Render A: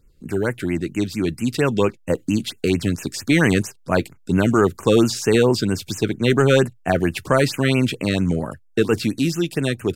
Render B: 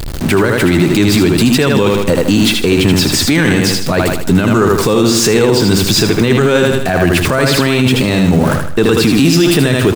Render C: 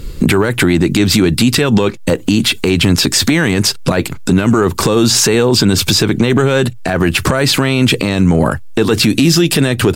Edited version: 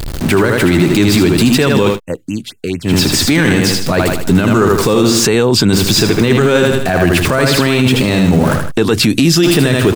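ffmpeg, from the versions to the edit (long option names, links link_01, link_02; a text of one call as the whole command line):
ffmpeg -i take0.wav -i take1.wav -i take2.wav -filter_complex "[2:a]asplit=2[link_01][link_02];[1:a]asplit=4[link_03][link_04][link_05][link_06];[link_03]atrim=end=2[link_07];[0:a]atrim=start=1.9:end=2.94[link_08];[link_04]atrim=start=2.84:end=5.252[link_09];[link_01]atrim=start=5.248:end=5.732[link_10];[link_05]atrim=start=5.728:end=8.72[link_11];[link_02]atrim=start=8.7:end=9.44[link_12];[link_06]atrim=start=9.42[link_13];[link_07][link_08]acrossfade=duration=0.1:curve1=tri:curve2=tri[link_14];[link_14][link_09]acrossfade=duration=0.1:curve1=tri:curve2=tri[link_15];[link_15][link_10]acrossfade=duration=0.004:curve1=hsin:curve2=hsin[link_16];[link_16][link_11]acrossfade=duration=0.004:curve1=hsin:curve2=hsin[link_17];[link_17][link_12]acrossfade=duration=0.02:curve1=tri:curve2=tri[link_18];[link_18][link_13]acrossfade=duration=0.02:curve1=tri:curve2=tri" out.wav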